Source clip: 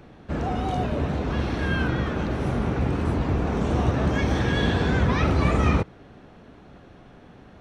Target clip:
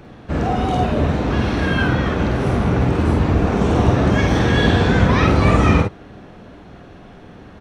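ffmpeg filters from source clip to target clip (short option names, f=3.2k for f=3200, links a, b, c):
-af "aecho=1:1:49|59:0.596|0.316,volume=6dB"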